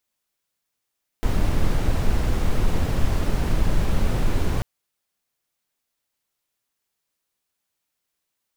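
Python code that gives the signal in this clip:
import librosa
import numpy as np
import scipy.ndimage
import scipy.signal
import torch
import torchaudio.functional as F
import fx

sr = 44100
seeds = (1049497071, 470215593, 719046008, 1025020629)

y = fx.noise_colour(sr, seeds[0], length_s=3.39, colour='brown', level_db=-18.5)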